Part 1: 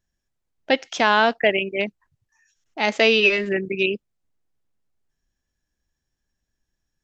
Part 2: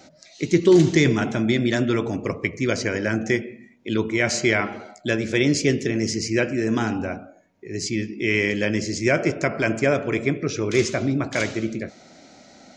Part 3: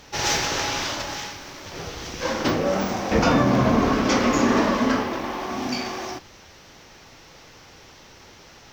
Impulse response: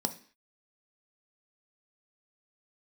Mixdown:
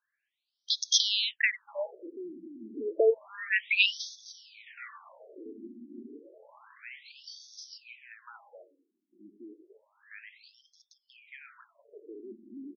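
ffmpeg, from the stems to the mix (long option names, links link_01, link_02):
-filter_complex "[0:a]acrossover=split=190|510|5800[link_01][link_02][link_03][link_04];[link_01]acompressor=threshold=-44dB:ratio=4[link_05];[link_03]acompressor=threshold=-30dB:ratio=4[link_06];[link_04]acompressor=threshold=-43dB:ratio=4[link_07];[link_05][link_02][link_06][link_07]amix=inputs=4:normalize=0,volume=1dB,asplit=2[link_08][link_09];[1:a]lowpass=2700,alimiter=limit=-16dB:level=0:latency=1:release=12,adelay=1500,volume=-18.5dB[link_10];[2:a]adelay=1550,volume=-17.5dB[link_11];[link_09]apad=whole_len=453257[link_12];[link_11][link_12]sidechaingate=range=-9dB:threshold=-52dB:ratio=16:detection=peak[link_13];[link_08][link_10][link_13]amix=inputs=3:normalize=0,equalizer=frequency=730:width=6.4:gain=-12.5,crystalizer=i=6.5:c=0,afftfilt=real='re*between(b*sr/1024,260*pow(4700/260,0.5+0.5*sin(2*PI*0.3*pts/sr))/1.41,260*pow(4700/260,0.5+0.5*sin(2*PI*0.3*pts/sr))*1.41)':imag='im*between(b*sr/1024,260*pow(4700/260,0.5+0.5*sin(2*PI*0.3*pts/sr))/1.41,260*pow(4700/260,0.5+0.5*sin(2*PI*0.3*pts/sr))*1.41)':win_size=1024:overlap=0.75"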